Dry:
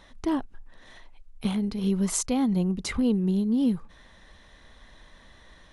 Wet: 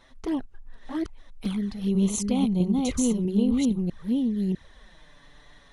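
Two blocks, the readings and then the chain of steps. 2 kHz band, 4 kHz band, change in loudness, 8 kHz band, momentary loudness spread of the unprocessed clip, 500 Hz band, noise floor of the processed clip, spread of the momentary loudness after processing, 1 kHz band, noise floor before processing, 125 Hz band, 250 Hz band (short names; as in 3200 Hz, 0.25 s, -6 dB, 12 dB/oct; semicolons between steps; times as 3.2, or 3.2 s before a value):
-3.5 dB, 0.0 dB, 0.0 dB, 0.0 dB, 6 LU, +1.5 dB, -55 dBFS, 10 LU, -1.5 dB, -54 dBFS, +1.5 dB, +2.0 dB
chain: reverse delay 0.65 s, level -1 dB; envelope flanger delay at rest 8.5 ms, full sweep at -21 dBFS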